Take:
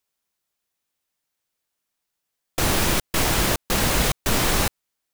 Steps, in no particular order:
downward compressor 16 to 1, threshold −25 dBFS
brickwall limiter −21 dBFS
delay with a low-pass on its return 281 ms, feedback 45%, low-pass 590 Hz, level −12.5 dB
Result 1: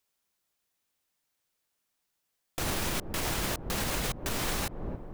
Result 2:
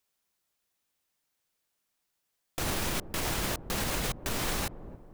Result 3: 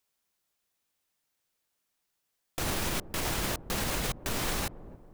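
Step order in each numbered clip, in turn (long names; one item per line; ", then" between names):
delay with a low-pass on its return, then downward compressor, then brickwall limiter
downward compressor, then delay with a low-pass on its return, then brickwall limiter
downward compressor, then brickwall limiter, then delay with a low-pass on its return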